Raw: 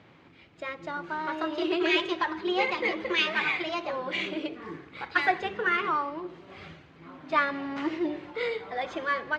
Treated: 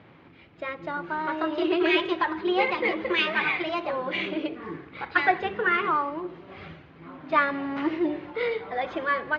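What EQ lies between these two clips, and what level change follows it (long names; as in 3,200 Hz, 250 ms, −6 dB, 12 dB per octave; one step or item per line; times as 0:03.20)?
high-frequency loss of the air 200 metres
+4.0 dB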